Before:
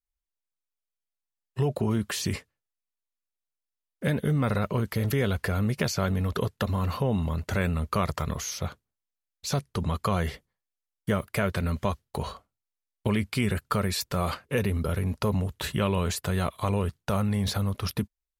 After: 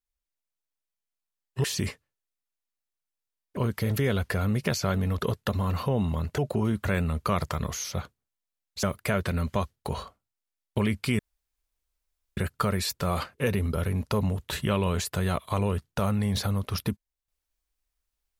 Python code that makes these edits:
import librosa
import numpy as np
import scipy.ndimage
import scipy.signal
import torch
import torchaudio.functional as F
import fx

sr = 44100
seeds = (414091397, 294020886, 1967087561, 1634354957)

y = fx.edit(x, sr, fx.move(start_s=1.64, length_s=0.47, to_s=7.52),
    fx.cut(start_s=4.04, length_s=0.67),
    fx.cut(start_s=9.5, length_s=1.62),
    fx.insert_room_tone(at_s=13.48, length_s=1.18), tone=tone)